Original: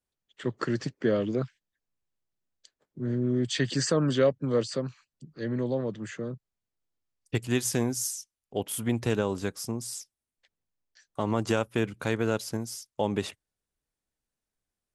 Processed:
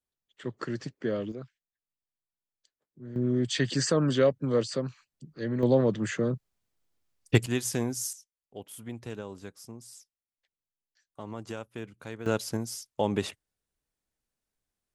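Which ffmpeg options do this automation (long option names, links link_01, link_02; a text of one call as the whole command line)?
ffmpeg -i in.wav -af "asetnsamples=nb_out_samples=441:pad=0,asendcmd='1.32 volume volume -12dB;3.16 volume volume 0dB;5.63 volume volume 7dB;7.46 volume volume -2.5dB;8.13 volume volume -12dB;12.26 volume volume 0.5dB',volume=-5dB" out.wav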